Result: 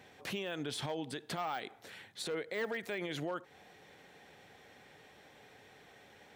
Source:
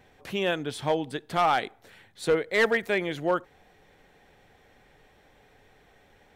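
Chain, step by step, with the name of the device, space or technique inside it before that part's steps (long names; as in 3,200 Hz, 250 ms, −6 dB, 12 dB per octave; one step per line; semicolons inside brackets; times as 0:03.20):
broadcast voice chain (high-pass filter 110 Hz 12 dB per octave; de-essing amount 90%; downward compressor 5 to 1, threshold −31 dBFS, peak gain reduction 11 dB; parametric band 4,900 Hz +4 dB 2.4 octaves; brickwall limiter −29 dBFS, peak gain reduction 10.5 dB)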